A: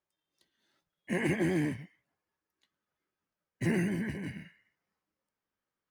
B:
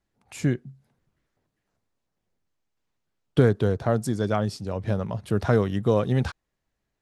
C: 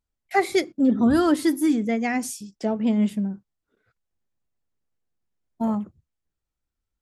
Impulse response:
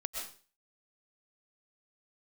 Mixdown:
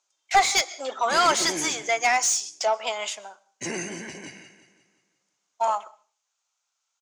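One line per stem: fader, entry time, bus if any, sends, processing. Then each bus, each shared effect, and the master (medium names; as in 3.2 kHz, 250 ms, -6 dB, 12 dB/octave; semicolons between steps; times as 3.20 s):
-5.0 dB, 0.00 s, no send, echo send -13 dB, tone controls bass -8 dB, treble +8 dB
mute
+1.5 dB, 0.00 s, send -21 dB, no echo send, high-pass 720 Hz 24 dB/octave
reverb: on, RT60 0.40 s, pre-delay 85 ms
echo: feedback delay 177 ms, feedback 48%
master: resonant low-pass 6.6 kHz, resonance Q 5.2; peaking EQ 1.8 kHz -8.5 dB 0.37 oct; overdrive pedal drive 18 dB, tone 3.2 kHz, clips at -8.5 dBFS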